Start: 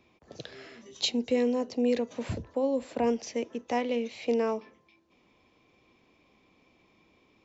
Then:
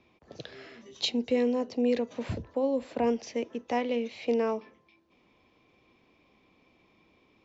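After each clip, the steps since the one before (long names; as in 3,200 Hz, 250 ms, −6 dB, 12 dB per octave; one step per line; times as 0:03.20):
low-pass filter 5,500 Hz 12 dB per octave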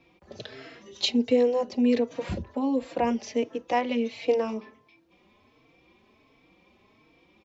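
barber-pole flanger 3.9 ms +1.4 Hz
level +6.5 dB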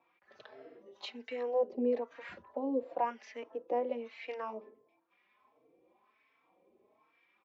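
LFO wah 1 Hz 420–1,800 Hz, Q 2.7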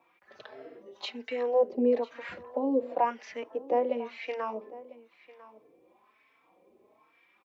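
single-tap delay 999 ms −19 dB
level +6 dB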